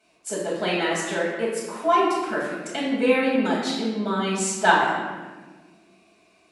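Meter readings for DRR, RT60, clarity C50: -8.0 dB, 1.4 s, 0.5 dB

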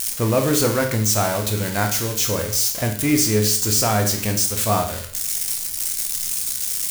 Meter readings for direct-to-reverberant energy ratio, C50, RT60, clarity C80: 3.0 dB, 8.5 dB, 0.55 s, 12.0 dB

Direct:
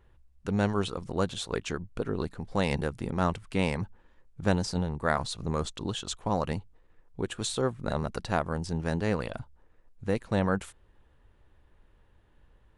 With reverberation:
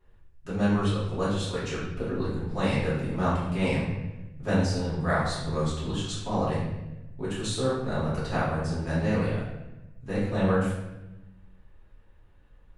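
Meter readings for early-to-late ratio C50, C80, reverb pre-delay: 1.0 dB, 4.0 dB, 3 ms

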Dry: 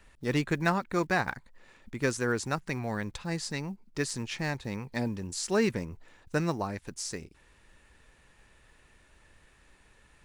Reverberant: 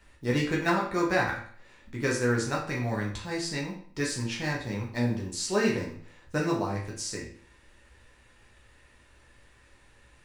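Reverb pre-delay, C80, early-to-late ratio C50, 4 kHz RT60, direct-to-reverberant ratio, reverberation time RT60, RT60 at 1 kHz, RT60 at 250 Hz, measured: 9 ms, 10.0 dB, 6.0 dB, 0.45 s, -3.0 dB, 0.50 s, 0.50 s, 0.55 s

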